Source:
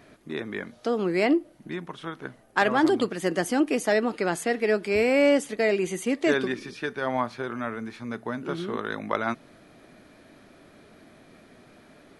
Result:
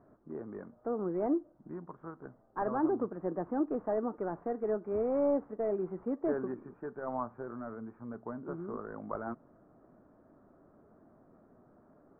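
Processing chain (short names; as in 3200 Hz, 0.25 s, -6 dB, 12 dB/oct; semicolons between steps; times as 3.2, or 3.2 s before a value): CVSD 32 kbps; steep low-pass 1300 Hz 36 dB/oct; gain -8 dB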